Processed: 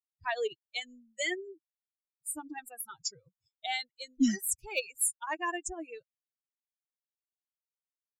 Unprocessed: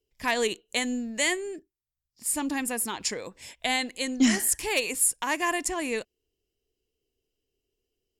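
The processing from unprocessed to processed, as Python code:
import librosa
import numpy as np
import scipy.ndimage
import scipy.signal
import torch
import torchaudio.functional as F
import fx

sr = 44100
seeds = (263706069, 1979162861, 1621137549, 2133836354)

y = fx.bin_expand(x, sr, power=3.0)
y = y * librosa.db_to_amplitude(-2.0)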